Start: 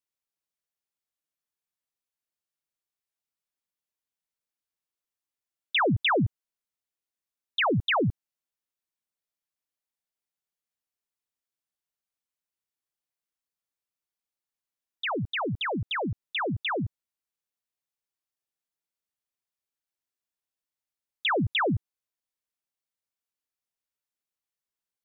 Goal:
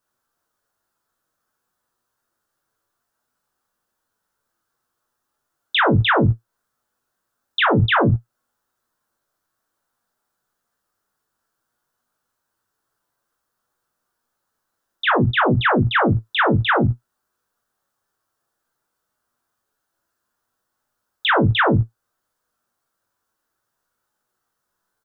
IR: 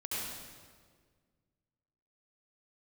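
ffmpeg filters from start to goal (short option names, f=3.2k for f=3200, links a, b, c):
-filter_complex "[0:a]highshelf=f=1.8k:t=q:w=3:g=-7,acompressor=threshold=-38dB:ratio=1.5,asplit=2[a][b];[b]aecho=0:1:21|41|57:0.501|0.631|0.355[c];[a][c]amix=inputs=2:normalize=0,flanger=delay=8.1:depth=1:regen=59:speed=0.58:shape=sinusoidal,alimiter=level_in=28.5dB:limit=-1dB:release=50:level=0:latency=1,volume=-7.5dB"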